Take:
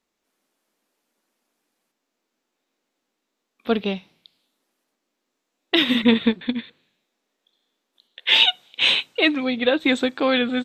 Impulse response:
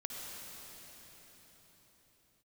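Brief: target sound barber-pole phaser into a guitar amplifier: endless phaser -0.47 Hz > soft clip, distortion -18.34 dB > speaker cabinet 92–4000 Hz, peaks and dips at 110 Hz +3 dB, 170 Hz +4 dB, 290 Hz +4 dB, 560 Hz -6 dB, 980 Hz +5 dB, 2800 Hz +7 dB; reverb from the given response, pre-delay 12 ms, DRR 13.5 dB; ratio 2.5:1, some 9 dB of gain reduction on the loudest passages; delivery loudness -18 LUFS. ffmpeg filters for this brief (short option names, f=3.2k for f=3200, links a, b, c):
-filter_complex "[0:a]acompressor=threshold=-26dB:ratio=2.5,asplit=2[a][b];[1:a]atrim=start_sample=2205,adelay=12[c];[b][c]afir=irnorm=-1:irlink=0,volume=-14dB[d];[a][d]amix=inputs=2:normalize=0,asplit=2[e][f];[f]afreqshift=-0.47[g];[e][g]amix=inputs=2:normalize=1,asoftclip=threshold=-19.5dB,highpass=92,equalizer=f=110:t=q:w=4:g=3,equalizer=f=170:t=q:w=4:g=4,equalizer=f=290:t=q:w=4:g=4,equalizer=f=560:t=q:w=4:g=-6,equalizer=f=980:t=q:w=4:g=5,equalizer=f=2.8k:t=q:w=4:g=7,lowpass=f=4k:w=0.5412,lowpass=f=4k:w=1.3066,volume=11dB"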